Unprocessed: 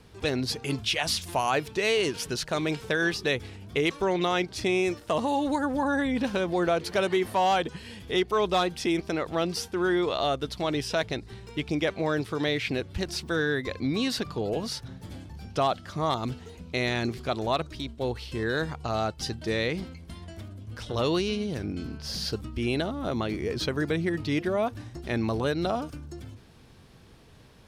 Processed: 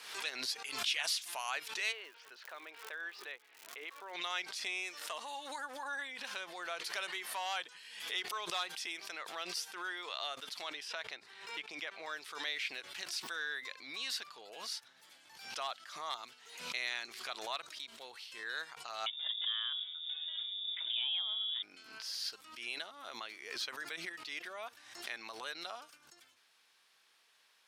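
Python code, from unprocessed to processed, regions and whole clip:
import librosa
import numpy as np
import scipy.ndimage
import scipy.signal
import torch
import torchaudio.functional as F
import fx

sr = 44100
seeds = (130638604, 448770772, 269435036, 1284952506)

y = fx.highpass(x, sr, hz=320.0, slope=12, at=(1.91, 4.13), fade=0.02)
y = fx.spacing_loss(y, sr, db_at_10k=41, at=(1.91, 4.13), fade=0.02)
y = fx.dmg_crackle(y, sr, seeds[0], per_s=190.0, level_db=-44.0, at=(1.91, 4.13), fade=0.02)
y = fx.chain(y, sr, fx.high_shelf(hz=4200.0, db=-10.5),
    fx.band_squash(depth_pct=100), at=(10.69, 12.07))
y = fx.chain(y, sr, fx.peak_eq(hz=1200.0, db=-7.5, octaves=2.8),
    fx.freq_invert(carrier_hz=3600),
    fx.band_squash(depth_pct=70), at=(19.06, 21.63))
y = scipy.signal.sosfilt(scipy.signal.butter(2, 1400.0, 'highpass', fs=sr, output='sos'), y)
y = fx.pre_swell(y, sr, db_per_s=66.0)
y = y * 10.0 ** (-6.5 / 20.0)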